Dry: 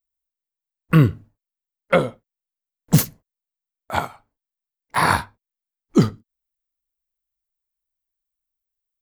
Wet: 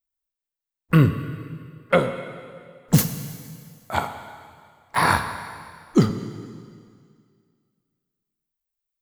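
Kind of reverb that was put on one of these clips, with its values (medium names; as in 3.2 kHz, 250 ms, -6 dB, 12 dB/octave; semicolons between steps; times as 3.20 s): plate-style reverb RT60 2.1 s, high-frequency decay 1×, DRR 8 dB; trim -1.5 dB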